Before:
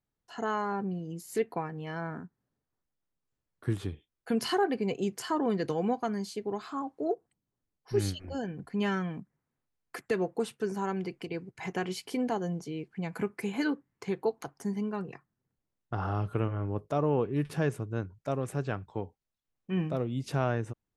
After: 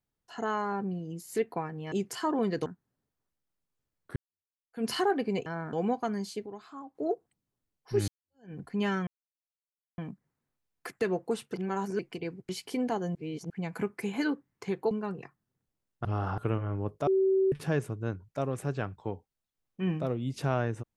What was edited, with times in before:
0:01.92–0:02.19: swap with 0:04.99–0:05.73
0:03.69–0:04.38: fade in exponential
0:06.46–0:06.95: clip gain −9 dB
0:08.08–0:08.53: fade in exponential
0:09.07: splice in silence 0.91 s
0:10.63–0:11.08: reverse
0:11.58–0:11.89: remove
0:12.55–0:12.90: reverse
0:14.31–0:14.81: remove
0:15.95–0:16.28: reverse
0:16.97–0:17.42: beep over 383 Hz −21.5 dBFS

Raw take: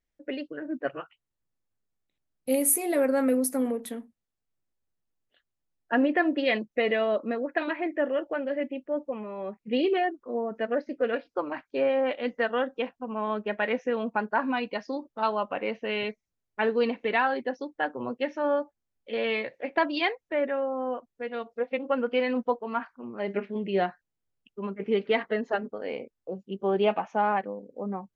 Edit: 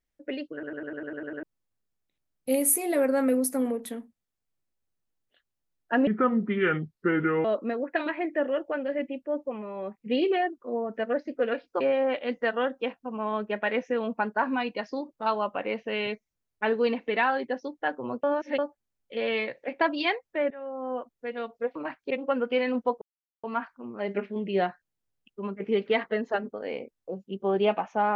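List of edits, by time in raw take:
0:00.53: stutter in place 0.10 s, 9 plays
0:06.07–0:07.06: play speed 72%
0:11.42–0:11.77: move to 0:21.72
0:18.20–0:18.55: reverse
0:20.47–0:20.97: fade in, from −18 dB
0:22.63: splice in silence 0.42 s

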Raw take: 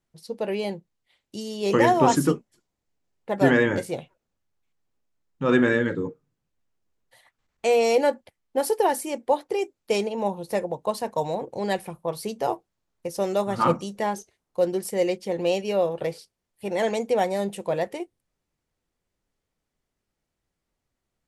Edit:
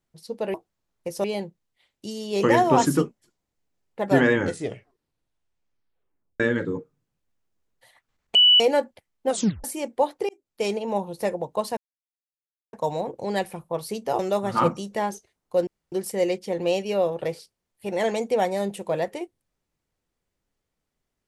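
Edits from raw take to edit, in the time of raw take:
0:03.66: tape stop 2.04 s
0:07.65–0:07.90: beep over 2,960 Hz −11.5 dBFS
0:08.58: tape stop 0.36 s
0:09.59–0:10.05: fade in
0:11.07: splice in silence 0.96 s
0:12.53–0:13.23: move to 0:00.54
0:14.71: splice in room tone 0.25 s

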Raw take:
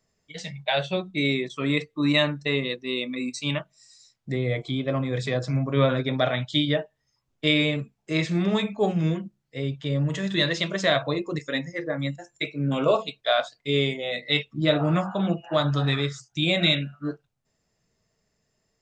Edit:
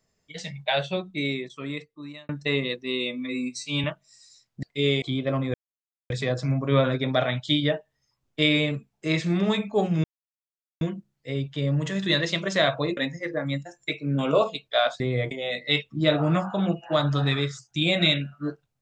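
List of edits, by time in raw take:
0:00.71–0:02.29: fade out
0:02.91–0:03.53: time-stretch 1.5×
0:04.32–0:04.63: swap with 0:13.53–0:13.92
0:05.15: splice in silence 0.56 s
0:09.09: splice in silence 0.77 s
0:11.25–0:11.50: remove

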